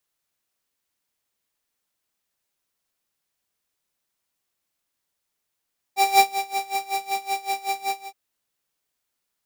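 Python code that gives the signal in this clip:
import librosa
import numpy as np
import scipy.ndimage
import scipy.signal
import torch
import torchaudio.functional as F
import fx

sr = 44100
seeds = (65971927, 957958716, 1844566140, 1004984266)

y = fx.sub_patch_tremolo(sr, seeds[0], note=79, wave='square', wave2='saw', interval_st=19, detune_cents=16, level2_db=-9.0, sub_db=-15.0, noise_db=-9.5, kind='highpass', cutoff_hz=170.0, q=1.1, env_oct=0.5, env_decay_s=0.27, env_sustain_pct=40, attack_ms=136.0, decay_s=0.22, sustain_db=-14.5, release_s=0.22, note_s=1.95, lfo_hz=5.3, tremolo_db=20.5)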